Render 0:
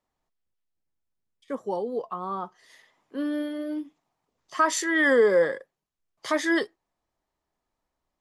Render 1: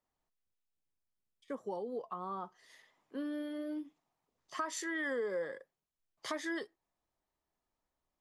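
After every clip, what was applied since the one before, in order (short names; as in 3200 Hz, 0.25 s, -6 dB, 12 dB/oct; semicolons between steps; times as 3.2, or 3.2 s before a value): compressor 3:1, threshold -31 dBFS, peak gain reduction 11.5 dB; gain -6 dB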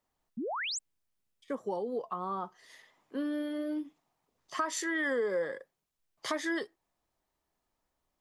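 painted sound rise, 0.37–0.79, 200–8300 Hz -40 dBFS; gain +5 dB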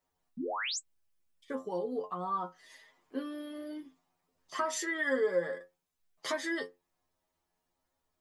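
metallic resonator 86 Hz, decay 0.23 s, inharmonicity 0.002; gain +7.5 dB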